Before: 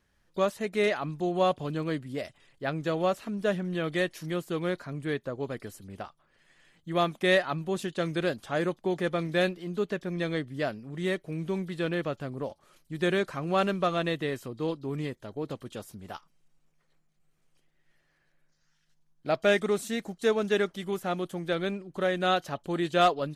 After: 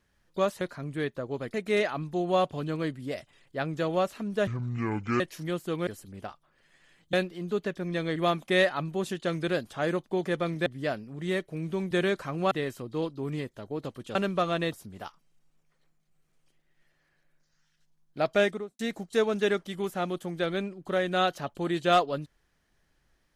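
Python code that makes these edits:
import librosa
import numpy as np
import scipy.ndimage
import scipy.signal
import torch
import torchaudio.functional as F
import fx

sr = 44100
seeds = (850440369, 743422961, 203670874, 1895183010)

y = fx.studio_fade_out(x, sr, start_s=19.45, length_s=0.43)
y = fx.edit(y, sr, fx.speed_span(start_s=3.54, length_s=0.49, speed=0.67),
    fx.move(start_s=4.7, length_s=0.93, to_s=0.61),
    fx.move(start_s=9.39, length_s=1.03, to_s=6.89),
    fx.cut(start_s=11.67, length_s=1.33),
    fx.move(start_s=13.6, length_s=0.57, to_s=15.81), tone=tone)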